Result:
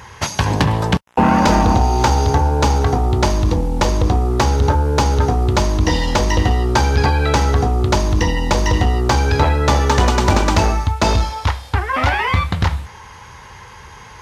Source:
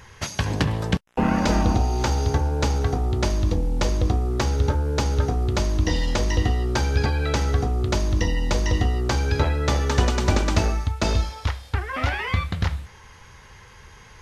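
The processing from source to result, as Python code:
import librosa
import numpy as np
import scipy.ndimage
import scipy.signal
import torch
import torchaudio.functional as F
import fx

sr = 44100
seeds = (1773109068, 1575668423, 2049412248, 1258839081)

p1 = 10.0 ** (-16.5 / 20.0) * (np.abs((x / 10.0 ** (-16.5 / 20.0) + 3.0) % 4.0 - 2.0) - 1.0)
p2 = x + (p1 * librosa.db_to_amplitude(-5.0))
p3 = scipy.signal.sosfilt(scipy.signal.butter(2, 48.0, 'highpass', fs=sr, output='sos'), p2)
p4 = fx.peak_eq(p3, sr, hz=920.0, db=7.0, octaves=0.6)
y = p4 * librosa.db_to_amplitude(3.5)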